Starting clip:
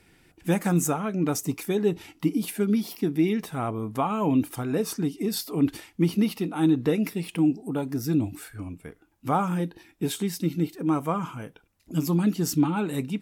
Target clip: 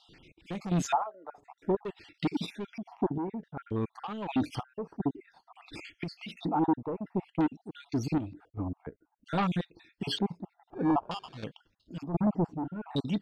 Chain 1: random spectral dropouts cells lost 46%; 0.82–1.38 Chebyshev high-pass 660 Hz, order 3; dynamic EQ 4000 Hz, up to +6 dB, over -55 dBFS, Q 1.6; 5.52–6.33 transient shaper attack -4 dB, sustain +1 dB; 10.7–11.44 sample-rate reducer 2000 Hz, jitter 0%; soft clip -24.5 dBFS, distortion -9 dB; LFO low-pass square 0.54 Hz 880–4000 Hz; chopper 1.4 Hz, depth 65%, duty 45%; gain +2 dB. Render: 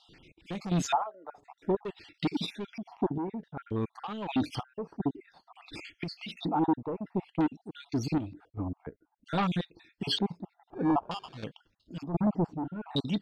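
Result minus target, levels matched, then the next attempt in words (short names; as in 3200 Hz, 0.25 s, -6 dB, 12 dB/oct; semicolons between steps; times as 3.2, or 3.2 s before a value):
4000 Hz band +3.5 dB
random spectral dropouts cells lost 46%; 0.82–1.38 Chebyshev high-pass 660 Hz, order 3; 5.52–6.33 transient shaper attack -4 dB, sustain +1 dB; 10.7–11.44 sample-rate reducer 2000 Hz, jitter 0%; soft clip -24.5 dBFS, distortion -9 dB; LFO low-pass square 0.54 Hz 880–4000 Hz; chopper 1.4 Hz, depth 65%, duty 45%; gain +2 dB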